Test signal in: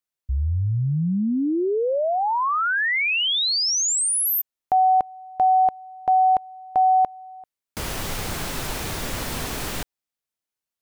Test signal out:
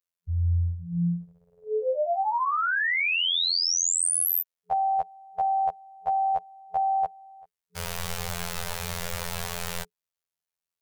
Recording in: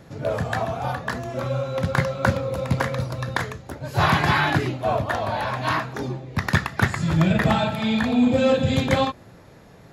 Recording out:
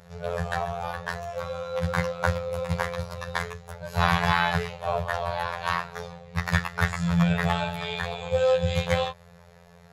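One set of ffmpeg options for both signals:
ffmpeg -i in.wav -af "afftfilt=real='hypot(re,im)*cos(PI*b)':imag='0':win_size=2048:overlap=0.75,afftfilt=real='re*(1-between(b*sr/4096,180,420))':imag='im*(1-between(b*sr/4096,180,420))':win_size=4096:overlap=0.75" out.wav

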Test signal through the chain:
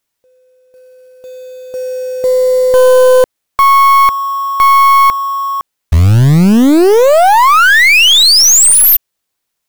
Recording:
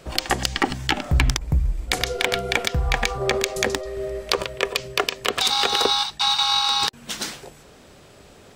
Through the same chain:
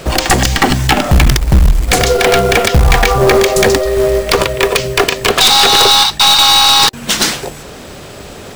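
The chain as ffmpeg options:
ffmpeg -i in.wav -af "acrusher=bits=4:mode=log:mix=0:aa=0.000001,apsyclip=18.5dB,aeval=exprs='clip(val(0),-1,0.473)':channel_layout=same,volume=-1dB" out.wav

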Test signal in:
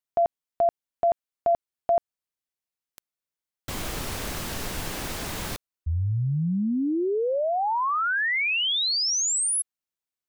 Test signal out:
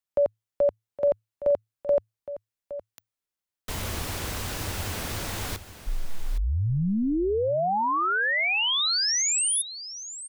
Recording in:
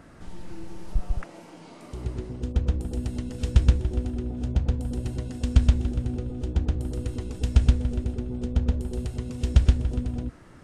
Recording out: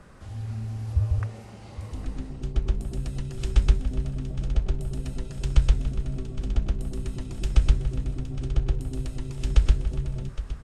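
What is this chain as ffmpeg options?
ffmpeg -i in.wav -af "aecho=1:1:815:0.211,afreqshift=-110" out.wav

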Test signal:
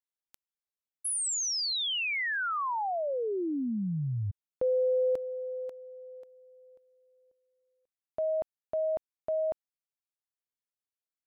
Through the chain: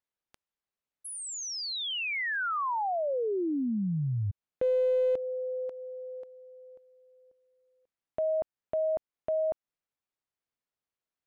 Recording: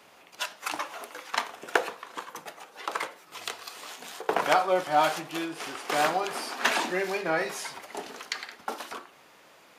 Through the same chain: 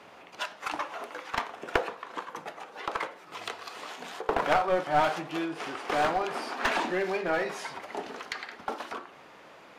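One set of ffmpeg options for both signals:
ffmpeg -i in.wav -filter_complex "[0:a]aemphasis=mode=reproduction:type=75kf,asplit=2[link_01][link_02];[link_02]acompressor=threshold=-44dB:ratio=6:attack=6.1:release=178:knee=1:detection=rms,volume=0dB[link_03];[link_01][link_03]amix=inputs=2:normalize=0,aeval=exprs='clip(val(0),-1,0.0708)':channel_layout=same" out.wav

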